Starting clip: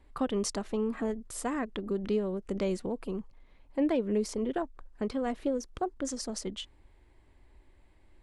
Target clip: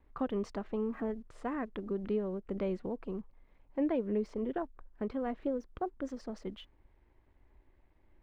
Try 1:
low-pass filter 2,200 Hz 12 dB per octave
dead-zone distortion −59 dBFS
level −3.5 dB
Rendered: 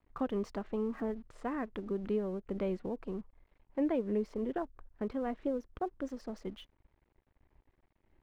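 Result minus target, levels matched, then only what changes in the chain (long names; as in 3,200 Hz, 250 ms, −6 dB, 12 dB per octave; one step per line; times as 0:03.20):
dead-zone distortion: distortion +11 dB
change: dead-zone distortion −70.5 dBFS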